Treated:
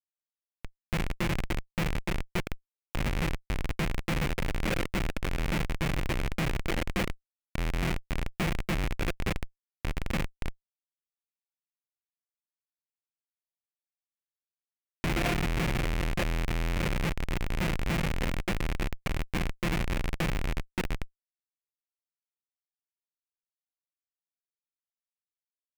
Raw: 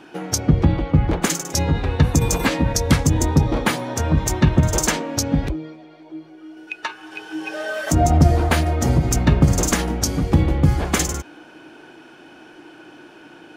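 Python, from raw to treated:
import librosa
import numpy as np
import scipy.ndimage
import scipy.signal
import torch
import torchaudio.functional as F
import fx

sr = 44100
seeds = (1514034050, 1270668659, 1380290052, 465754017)

p1 = fx.fade_in_head(x, sr, length_s=0.72)
p2 = fx.graphic_eq(p1, sr, hz=(500, 1000, 2000, 8000), db=(9, -11, -6, -12))
p3 = p2 + fx.echo_wet_highpass(p2, sr, ms=455, feedback_pct=85, hz=1500.0, wet_db=-15.0, dry=0)
p4 = fx.mod_noise(p3, sr, seeds[0], snr_db=15)
p5 = fx.stretch_grains(p4, sr, factor=1.9, grain_ms=24.0)
p6 = fx.schmitt(p5, sr, flips_db=-15.0)
p7 = fx.peak_eq(p6, sr, hz=2300.0, db=10.0, octaves=1.0)
y = F.gain(torch.from_numpy(p7), -7.5).numpy()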